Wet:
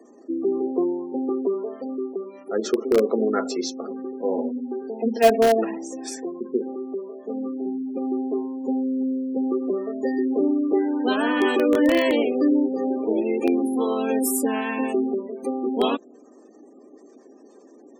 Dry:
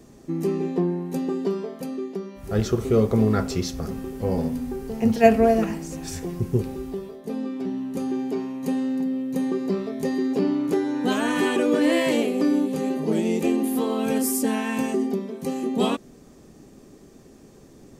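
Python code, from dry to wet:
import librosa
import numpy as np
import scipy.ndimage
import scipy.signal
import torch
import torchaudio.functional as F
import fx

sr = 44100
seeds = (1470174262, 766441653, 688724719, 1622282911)

p1 = fx.spec_gate(x, sr, threshold_db=-25, keep='strong')
p2 = scipy.signal.sosfilt(scipy.signal.butter(8, 250.0, 'highpass', fs=sr, output='sos'), p1)
p3 = (np.mod(10.0 ** (12.0 / 20.0) * p2 + 1.0, 2.0) - 1.0) / 10.0 ** (12.0 / 20.0)
y = p2 + (p3 * 10.0 ** (-10.0 / 20.0))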